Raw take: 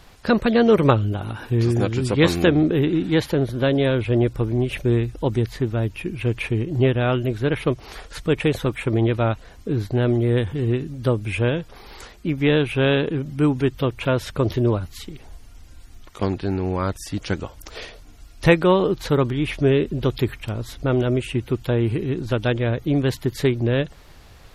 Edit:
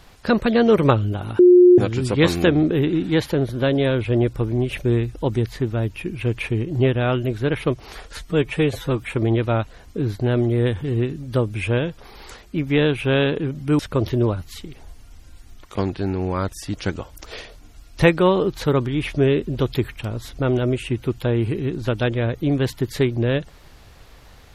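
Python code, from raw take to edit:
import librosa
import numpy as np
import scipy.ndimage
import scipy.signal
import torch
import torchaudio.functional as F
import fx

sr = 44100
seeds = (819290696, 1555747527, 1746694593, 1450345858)

y = fx.edit(x, sr, fx.bleep(start_s=1.39, length_s=0.39, hz=358.0, db=-6.5),
    fx.stretch_span(start_s=8.17, length_s=0.58, factor=1.5),
    fx.cut(start_s=13.5, length_s=0.73), tone=tone)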